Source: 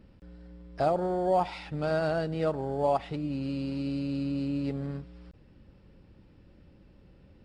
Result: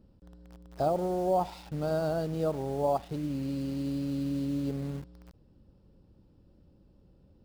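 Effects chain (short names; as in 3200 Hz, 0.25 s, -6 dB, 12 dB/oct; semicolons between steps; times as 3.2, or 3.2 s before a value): bell 2100 Hz -14.5 dB 1.1 oct; in parallel at -5.5 dB: bit-crush 7-bit; on the sum: gain -4 dB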